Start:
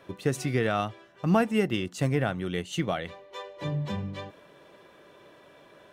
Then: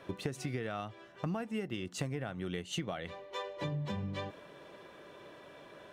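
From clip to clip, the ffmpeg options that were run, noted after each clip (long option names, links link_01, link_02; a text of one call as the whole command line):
ffmpeg -i in.wav -af "acompressor=threshold=-34dB:ratio=16,highshelf=frequency=12000:gain=-7,volume=1dB" out.wav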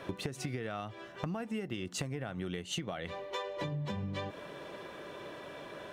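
ffmpeg -i in.wav -af "acompressor=threshold=-42dB:ratio=4,volume=7dB" out.wav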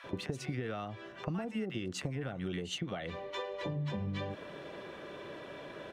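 ffmpeg -i in.wav -filter_complex "[0:a]highshelf=frequency=7200:gain=-11,acrossover=split=970[link_01][link_02];[link_01]adelay=40[link_03];[link_03][link_02]amix=inputs=2:normalize=0,volume=1dB" out.wav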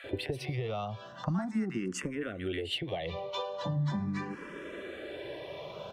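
ffmpeg -i in.wav -filter_complex "[0:a]asplit=2[link_01][link_02];[link_02]afreqshift=0.4[link_03];[link_01][link_03]amix=inputs=2:normalize=1,volume=6dB" out.wav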